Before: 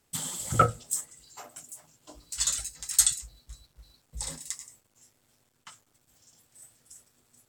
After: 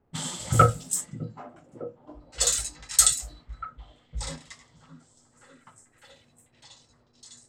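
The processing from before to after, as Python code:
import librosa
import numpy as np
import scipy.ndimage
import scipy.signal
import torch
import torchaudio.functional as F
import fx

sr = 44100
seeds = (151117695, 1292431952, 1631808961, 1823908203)

y = fx.hpss(x, sr, part='harmonic', gain_db=6)
y = fx.env_lowpass(y, sr, base_hz=880.0, full_db=-24.5)
y = fx.echo_stepped(y, sr, ms=606, hz=220.0, octaves=0.7, feedback_pct=70, wet_db=-6)
y = y * 10.0 ** (2.0 / 20.0)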